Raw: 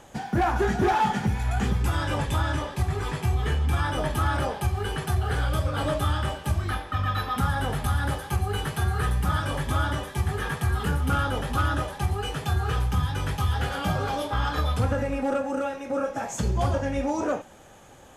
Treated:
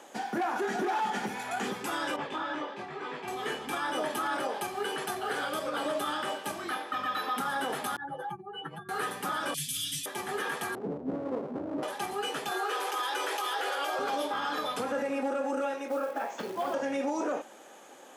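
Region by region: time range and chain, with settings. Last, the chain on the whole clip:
0:02.16–0:03.28: low-pass filter 3,400 Hz + micro pitch shift up and down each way 14 cents
0:07.96–0:08.89: expanding power law on the bin magnitudes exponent 2.2 + mains-hum notches 50/100/150/200/250/300/350/400 Hz + comb filter 6 ms, depth 85%
0:09.54–0:10.06: elliptic band-stop filter 170–2,800 Hz, stop band 80 dB + bass and treble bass +4 dB, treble +11 dB + comb filter 7.3 ms, depth 94%
0:10.75–0:11.83: Butterworth low-pass 660 Hz + low-shelf EQ 190 Hz +6 dB + windowed peak hold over 17 samples
0:12.51–0:13.99: Butterworth high-pass 320 Hz 72 dB per octave + envelope flattener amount 70%
0:15.88–0:16.74: Bessel low-pass filter 3,000 Hz, order 4 + low-shelf EQ 190 Hz −9.5 dB + log-companded quantiser 6 bits
whole clip: high-pass filter 260 Hz 24 dB per octave; brickwall limiter −23 dBFS

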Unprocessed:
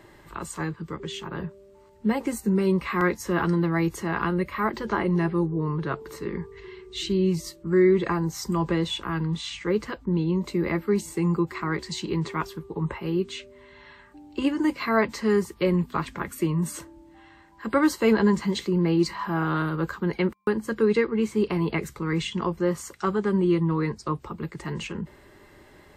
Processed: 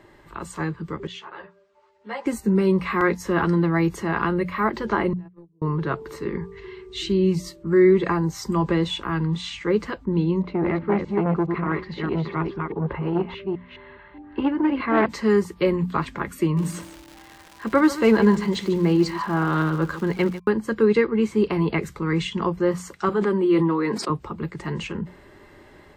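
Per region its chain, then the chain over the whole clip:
0:01.07–0:02.26: three-way crossover with the lows and the highs turned down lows −23 dB, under 510 Hz, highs −24 dB, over 7,000 Hz + hum removal 201 Hz, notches 10 + string-ensemble chorus
0:05.13–0:05.62: noise gate −19 dBFS, range −43 dB + double-tracking delay 12 ms −2.5 dB + downward compressor 5 to 1, threshold −43 dBFS
0:10.42–0:15.06: delay that plays each chunk backwards 209 ms, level −4 dB + Bessel low-pass filter 2,300 Hz, order 4 + saturating transformer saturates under 730 Hz
0:16.56–0:20.38: surface crackle 340 per second −34 dBFS + single-tap delay 146 ms −14 dB
0:23.09–0:24.10: high-pass filter 220 Hz 24 dB per octave + parametric band 6,100 Hz −5.5 dB 0.48 octaves + level that may fall only so fast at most 28 dB per second
whole clip: high-shelf EQ 5,900 Hz −8.5 dB; mains-hum notches 60/120/180 Hz; automatic gain control gain up to 3.5 dB

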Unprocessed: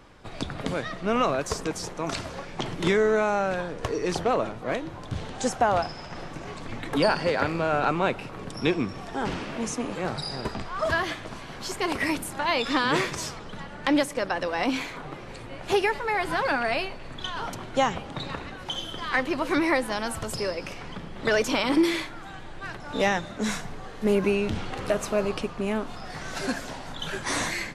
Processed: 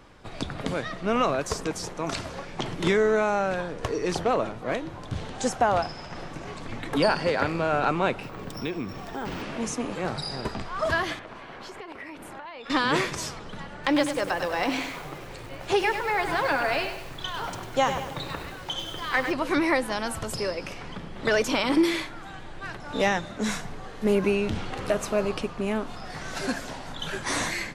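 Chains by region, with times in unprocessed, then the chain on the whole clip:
0:08.23–0:09.42: downward compressor 2.5 to 1, threshold −29 dBFS + bad sample-rate conversion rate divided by 2×, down filtered, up hold
0:11.19–0:12.70: bass and treble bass −9 dB, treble −15 dB + downward compressor 12 to 1, threshold −36 dBFS
0:13.74–0:19.32: Butterworth low-pass 9,800 Hz + parametric band 230 Hz −8 dB 0.3 octaves + feedback echo at a low word length 99 ms, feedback 55%, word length 7 bits, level −8 dB
whole clip: no processing

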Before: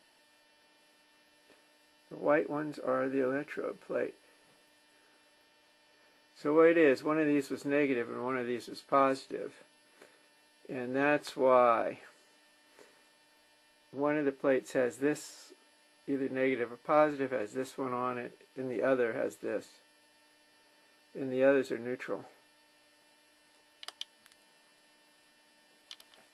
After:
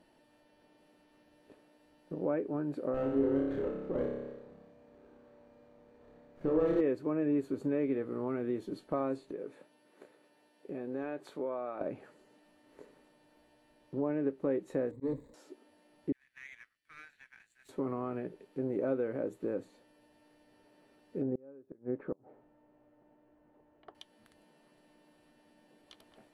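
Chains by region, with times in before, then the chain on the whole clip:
0:02.94–0:06.81: Gaussian smoothing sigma 2.1 samples + flutter between parallel walls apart 5 metres, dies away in 0.84 s + windowed peak hold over 9 samples
0:09.31–0:11.81: high-pass filter 340 Hz 6 dB per octave + downward compressor 1.5 to 1, threshold −48 dBFS
0:14.91–0:15.34: running median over 41 samples + EQ curve with evenly spaced ripples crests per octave 1, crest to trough 14 dB + volume swells 166 ms
0:16.12–0:17.69: Butterworth high-pass 1,600 Hz 48 dB per octave + power curve on the samples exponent 1.4
0:21.22–0:23.95: low-pass filter 1,200 Hz + gate with flip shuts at −26 dBFS, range −31 dB
whole clip: downward compressor 2 to 1, threshold −40 dBFS; tilt shelving filter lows +10 dB, about 850 Hz; notch filter 5,100 Hz, Q 10

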